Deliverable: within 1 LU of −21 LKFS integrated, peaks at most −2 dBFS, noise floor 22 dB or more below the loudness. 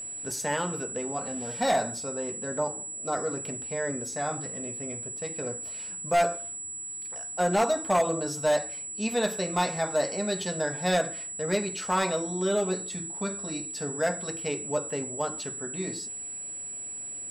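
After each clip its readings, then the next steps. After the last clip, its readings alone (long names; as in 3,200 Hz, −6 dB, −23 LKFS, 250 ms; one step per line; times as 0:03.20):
share of clipped samples 0.6%; peaks flattened at −18.0 dBFS; interfering tone 7,800 Hz; level of the tone −35 dBFS; integrated loudness −29.5 LKFS; sample peak −18.0 dBFS; target loudness −21.0 LKFS
→ clipped peaks rebuilt −18 dBFS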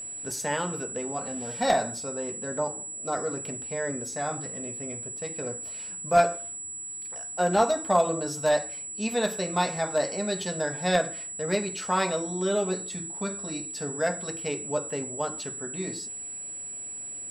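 share of clipped samples 0.0%; interfering tone 7,800 Hz; level of the tone −35 dBFS
→ notch filter 7,800 Hz, Q 30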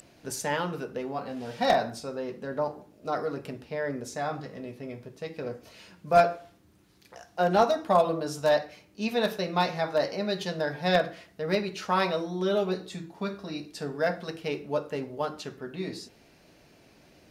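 interfering tone none found; integrated loudness −29.0 LKFS; sample peak −8.5 dBFS; target loudness −21.0 LKFS
→ level +8 dB
brickwall limiter −2 dBFS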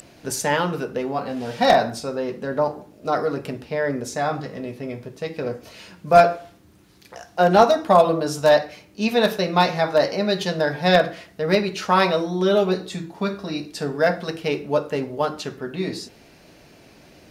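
integrated loudness −21.5 LKFS; sample peak −2.0 dBFS; background noise floor −51 dBFS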